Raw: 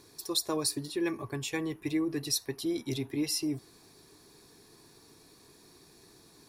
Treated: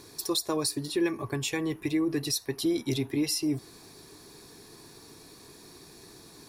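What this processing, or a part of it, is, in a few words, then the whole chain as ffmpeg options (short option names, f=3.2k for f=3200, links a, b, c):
clipper into limiter: -af "asoftclip=type=hard:threshold=-19dB,alimiter=level_in=2dB:limit=-24dB:level=0:latency=1:release=322,volume=-2dB,volume=7dB"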